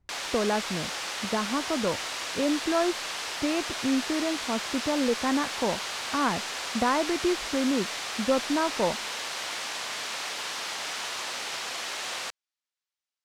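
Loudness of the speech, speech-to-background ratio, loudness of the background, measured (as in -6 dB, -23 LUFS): -29.5 LUFS, 2.5 dB, -32.0 LUFS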